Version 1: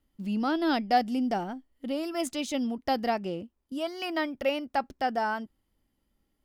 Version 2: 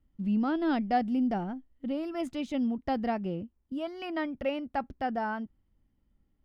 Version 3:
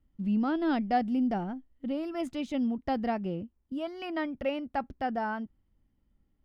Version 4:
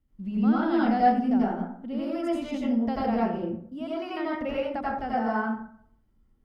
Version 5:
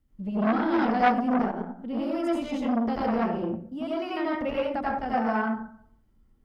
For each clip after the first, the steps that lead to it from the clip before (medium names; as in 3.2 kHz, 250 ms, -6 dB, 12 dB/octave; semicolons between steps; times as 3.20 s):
tone controls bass +10 dB, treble -14 dB; trim -4 dB
no audible change
plate-style reverb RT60 0.62 s, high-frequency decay 0.45×, pre-delay 75 ms, DRR -7 dB; trim -3.5 dB
transformer saturation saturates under 1.2 kHz; trim +2.5 dB